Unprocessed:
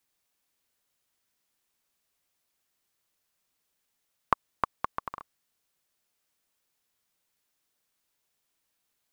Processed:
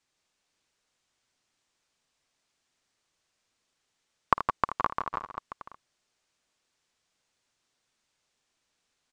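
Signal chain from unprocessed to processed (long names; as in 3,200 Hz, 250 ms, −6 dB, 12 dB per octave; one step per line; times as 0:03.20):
low-pass filter 7,800 Hz 24 dB per octave
multi-tap delay 53/79/162/170/535 ms −17/−12.5/−8.5/−9.5/−9.5 dB
level +2.5 dB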